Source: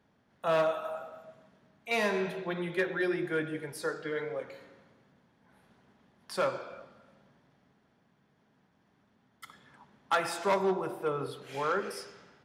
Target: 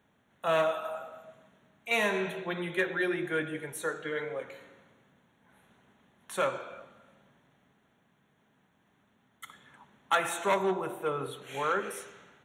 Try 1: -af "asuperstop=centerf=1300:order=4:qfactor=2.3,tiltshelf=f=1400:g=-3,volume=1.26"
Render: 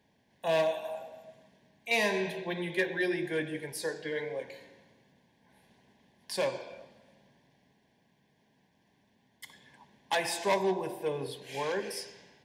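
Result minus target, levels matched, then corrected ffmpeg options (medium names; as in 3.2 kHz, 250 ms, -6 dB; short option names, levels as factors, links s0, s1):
4 kHz band +3.0 dB
-af "asuperstop=centerf=4900:order=4:qfactor=2.3,tiltshelf=f=1400:g=-3,volume=1.26"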